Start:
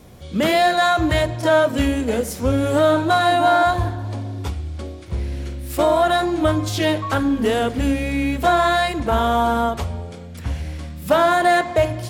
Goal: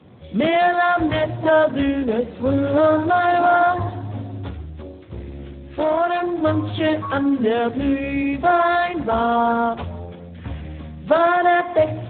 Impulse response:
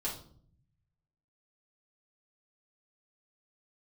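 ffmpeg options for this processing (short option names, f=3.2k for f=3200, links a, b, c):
-filter_complex "[0:a]asplit=3[a][b][c];[a]afade=t=out:st=4.64:d=0.02[d];[b]aeval=exprs='(tanh(3.98*val(0)+0.5)-tanh(0.5))/3.98':c=same,afade=t=in:st=4.64:d=0.02,afade=t=out:st=6.43:d=0.02[e];[c]afade=t=in:st=6.43:d=0.02[f];[d][e][f]amix=inputs=3:normalize=0" -ar 8000 -c:a libspeex -b:a 8k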